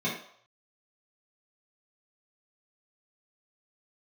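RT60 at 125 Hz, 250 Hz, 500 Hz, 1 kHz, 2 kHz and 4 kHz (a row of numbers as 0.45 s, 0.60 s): 0.40 s, 0.35 s, 0.60 s, 0.70 s, 0.55 s, 0.55 s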